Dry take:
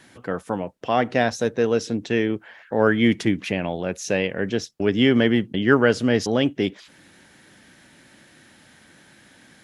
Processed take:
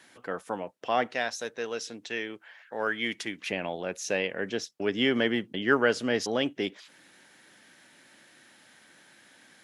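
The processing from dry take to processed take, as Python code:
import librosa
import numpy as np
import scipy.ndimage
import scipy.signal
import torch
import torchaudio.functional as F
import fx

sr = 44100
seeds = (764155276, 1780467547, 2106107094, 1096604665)

y = fx.highpass(x, sr, hz=fx.steps((0.0, 510.0), (1.07, 1400.0), (3.46, 460.0)), slope=6)
y = y * librosa.db_to_amplitude(-3.5)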